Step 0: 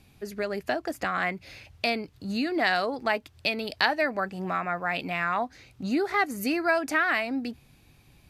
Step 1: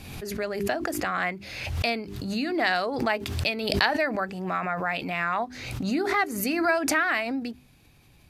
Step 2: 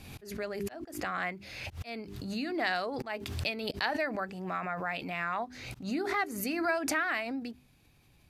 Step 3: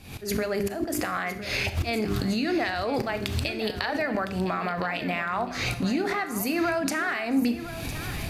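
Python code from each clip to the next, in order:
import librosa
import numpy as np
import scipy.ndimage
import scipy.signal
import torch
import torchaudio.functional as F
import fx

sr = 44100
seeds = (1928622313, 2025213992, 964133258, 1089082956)

y1 = fx.hum_notches(x, sr, base_hz=50, count=8)
y1 = fx.pre_swell(y1, sr, db_per_s=44.0)
y2 = fx.auto_swell(y1, sr, attack_ms=163.0)
y2 = y2 * librosa.db_to_amplitude(-6.5)
y3 = fx.recorder_agc(y2, sr, target_db=-19.0, rise_db_per_s=51.0, max_gain_db=30)
y3 = fx.echo_feedback(y3, sr, ms=1009, feedback_pct=30, wet_db=-13)
y3 = fx.rev_schroeder(y3, sr, rt60_s=0.54, comb_ms=26, drr_db=10.0)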